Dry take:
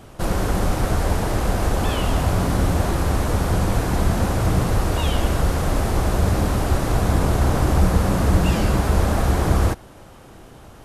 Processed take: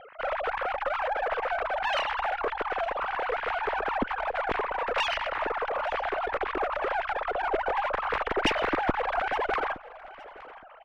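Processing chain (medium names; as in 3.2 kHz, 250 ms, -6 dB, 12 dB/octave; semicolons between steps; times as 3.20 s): formants replaced by sine waves; low-pass 1.8 kHz 12 dB/octave; peaking EQ 550 Hz -10.5 dB 2.8 oct; in parallel at -11.5 dB: hard clipper -24.5 dBFS, distortion -12 dB; on the sum: valve stage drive 17 dB, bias 0.8; on a send: feedback delay 867 ms, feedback 21%, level -19 dB; on the sum: trim +1 dB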